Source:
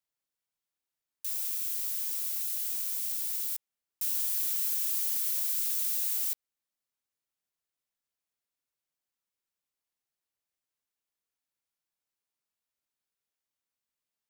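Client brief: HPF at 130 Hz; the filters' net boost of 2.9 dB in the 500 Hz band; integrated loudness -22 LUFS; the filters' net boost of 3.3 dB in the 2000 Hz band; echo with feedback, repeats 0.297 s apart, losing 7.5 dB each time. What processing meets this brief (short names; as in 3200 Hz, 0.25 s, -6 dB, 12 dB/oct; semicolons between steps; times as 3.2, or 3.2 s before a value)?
HPF 130 Hz; bell 500 Hz +3.5 dB; bell 2000 Hz +4 dB; feedback echo 0.297 s, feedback 42%, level -7.5 dB; gain +6 dB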